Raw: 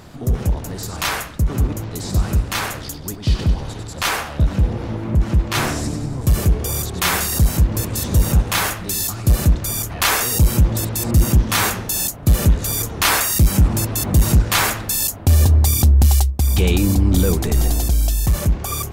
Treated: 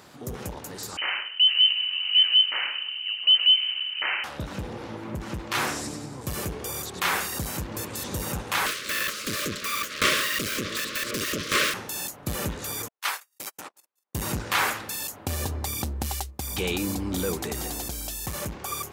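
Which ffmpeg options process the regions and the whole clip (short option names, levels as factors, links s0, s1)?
-filter_complex "[0:a]asettb=1/sr,asplit=3[s0][s1][s2];[s0]atrim=end=0.974[s3];[s1]atrim=start=0.97:end=4.24,asetpts=PTS-STARTPTS,afade=t=in:d=0.004:c=qsin,afade=t=out:st=3.266:d=0.004:c=qsin,tiltshelf=f=670:g=4.5,lowpass=f=2600:t=q:w=0.5098,lowpass=f=2600:t=q:w=0.6013,lowpass=f=2600:t=q:w=0.9,lowpass=f=2600:t=q:w=2.563,afreqshift=-3100[s4];[s2]atrim=start=4.236[s5];[s3][s4]acrossfade=d=0.004:c1=hsin:c2=qsin[s6];[s6][s5]acrossfade=d=0.004:c1=qsin:c2=hsin,asettb=1/sr,asplit=3[s7][s8][s9];[s7]atrim=end=8.664[s10];[s8]atrim=start=8.66:end=11.74,asetpts=PTS-STARTPTS,afade=t=in:d=0.004:c=qsin,afade=t=out:st=3.076:d=0.004:c=qsin,equalizer=f=3900:w=0.38:g=14,aeval=exprs='abs(val(0))':c=same,asuperstop=centerf=820:order=20:qfactor=2[s11];[s9]atrim=start=11.736[s12];[s10][s11]acrossfade=d=0.004:c1=hsin:c2=qsin[s13];[s13][s12]acrossfade=d=0.004:c1=qsin:c2=hsin,asettb=1/sr,asplit=3[s14][s15][s16];[s14]atrim=end=12.884[s17];[s15]atrim=start=12.88:end=14.15,asetpts=PTS-STARTPTS,afade=t=in:d=0.004:c=qsin,afade=t=out:st=1.266:d=0.004:c=qsin,agate=range=0.002:threshold=0.178:ratio=16:release=100:detection=peak,highpass=600[s18];[s16]atrim=start=14.146[s19];[s17][s18]acrossfade=d=0.004:c1=hsin:c2=qsin[s20];[s20][s19]acrossfade=d=0.004:c1=qsin:c2=hsin,acrossover=split=3200[s21][s22];[s22]acompressor=threshold=0.0501:ratio=4:attack=1:release=60[s23];[s21][s23]amix=inputs=2:normalize=0,highpass=f=510:p=1,bandreject=f=670:w=12,volume=0.668"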